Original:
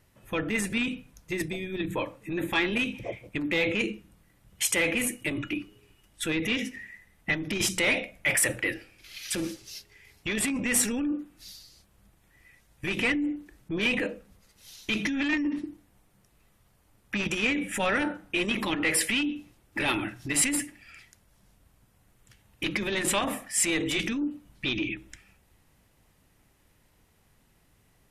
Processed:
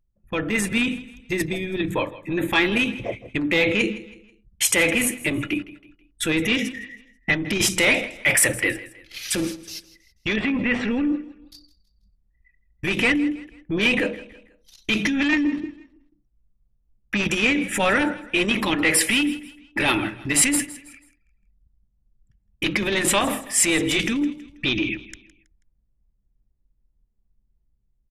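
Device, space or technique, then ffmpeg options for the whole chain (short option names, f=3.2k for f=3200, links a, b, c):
voice memo with heavy noise removal: -filter_complex "[0:a]asettb=1/sr,asplit=3[a][b][c];[a]atrim=end=10.364[d];[b]atrim=start=10.36:end=11.52,asetpts=PTS-STARTPTS,afade=t=in:d=0.004:c=qsin,afade=t=out:st=1.156:d=0.004:c=qsin,lowpass=f=3.1k:w=0.5412,lowpass=f=3.1k:w=1.3066[e];[c]atrim=start=11.516[f];[d][e]acrossfade=d=0.004:c1=hsin:c2=qsin[g];[g][f]acrossfade=d=0.004:c1=qsin:c2=hsin,anlmdn=0.0398,dynaudnorm=f=200:g=5:m=3.5dB,aecho=1:1:162|324|486:0.126|0.0478|0.0182,volume=3dB"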